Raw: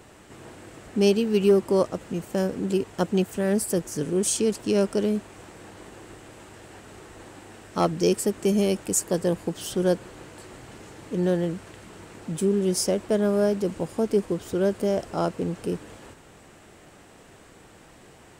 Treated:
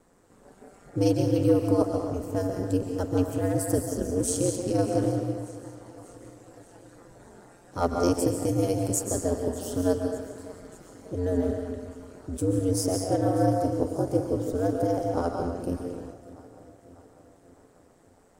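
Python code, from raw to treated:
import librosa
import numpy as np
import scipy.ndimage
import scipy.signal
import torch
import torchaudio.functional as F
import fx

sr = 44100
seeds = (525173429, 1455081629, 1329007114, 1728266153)

y = fx.peak_eq(x, sr, hz=2800.0, db=-11.5, octaves=1.2)
y = fx.rev_freeverb(y, sr, rt60_s=1.1, hf_ratio=0.85, predelay_ms=100, drr_db=2.5)
y = fx.noise_reduce_blind(y, sr, reduce_db=8)
y = fx.echo_feedback(y, sr, ms=594, feedback_pct=58, wet_db=-19.5)
y = y * np.sin(2.0 * np.pi * 90.0 * np.arange(len(y)) / sr)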